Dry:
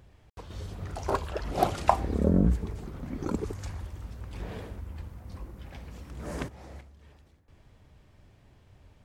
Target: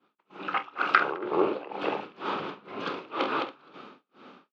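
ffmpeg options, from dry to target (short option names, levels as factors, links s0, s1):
-filter_complex "[0:a]equalizer=f=640:w=5.7:g=9,aecho=1:1:56|422|558:0.316|0.335|0.2,asetrate=88200,aresample=44100,asplit=2[s0][s1];[s1]acompressor=threshold=0.0158:ratio=6,volume=1[s2];[s0][s2]amix=inputs=2:normalize=0,asoftclip=type=hard:threshold=0.316,dynaudnorm=f=340:g=7:m=4.73,highpass=f=290:w=0.5412,highpass=f=290:w=1.3066,equalizer=f=660:t=q:w=4:g=-5,equalizer=f=1900:t=q:w=4:g=-8,equalizer=f=2600:t=q:w=4:g=5,lowpass=f=3600:w=0.5412,lowpass=f=3600:w=1.3066,asplit=2[s3][s4];[s4]adelay=47,volume=0.266[s5];[s3][s5]amix=inputs=2:normalize=0,tremolo=f=2.1:d=0.92,agate=range=0.0224:threshold=0.00355:ratio=3:detection=peak"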